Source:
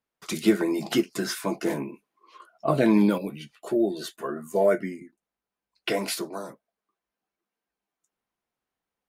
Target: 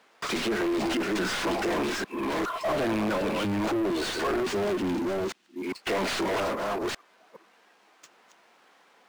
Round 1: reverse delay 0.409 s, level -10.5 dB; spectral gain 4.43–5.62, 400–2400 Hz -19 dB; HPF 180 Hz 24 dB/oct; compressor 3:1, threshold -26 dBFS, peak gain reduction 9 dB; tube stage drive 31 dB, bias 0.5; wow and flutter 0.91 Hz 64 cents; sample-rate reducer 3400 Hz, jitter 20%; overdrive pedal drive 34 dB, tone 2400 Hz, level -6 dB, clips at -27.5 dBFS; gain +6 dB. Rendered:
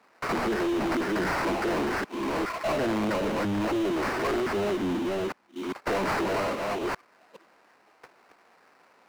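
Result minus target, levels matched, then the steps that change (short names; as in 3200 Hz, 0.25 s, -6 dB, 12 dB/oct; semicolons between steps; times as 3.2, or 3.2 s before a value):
sample-rate reducer: distortion +5 dB
change: sample-rate reducer 13000 Hz, jitter 20%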